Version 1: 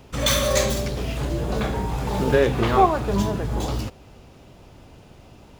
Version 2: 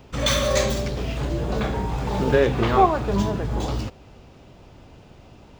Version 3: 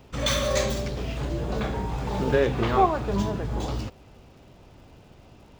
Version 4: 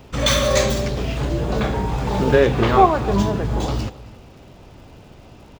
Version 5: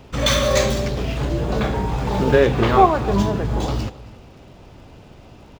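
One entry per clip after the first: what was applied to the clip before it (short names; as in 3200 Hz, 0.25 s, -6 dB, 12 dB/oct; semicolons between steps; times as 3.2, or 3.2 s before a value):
bell 12000 Hz -12 dB 0.79 oct
crackle 170/s -49 dBFS; gain -3.5 dB
outdoor echo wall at 46 m, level -19 dB; gain +7 dB
median filter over 3 samples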